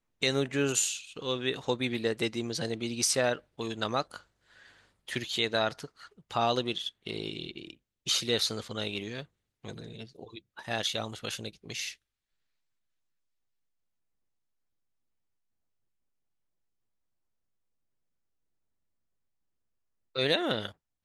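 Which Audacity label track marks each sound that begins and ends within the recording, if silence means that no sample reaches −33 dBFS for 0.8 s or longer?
5.080000	11.920000	sound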